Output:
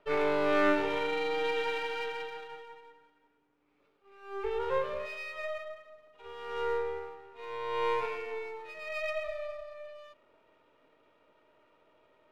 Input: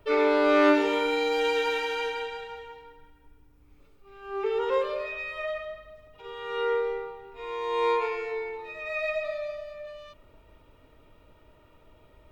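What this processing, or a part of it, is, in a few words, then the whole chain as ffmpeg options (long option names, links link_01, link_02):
crystal radio: -af "highpass=340,lowpass=3400,aeval=exprs='if(lt(val(0),0),0.447*val(0),val(0))':channel_layout=same,volume=-2dB"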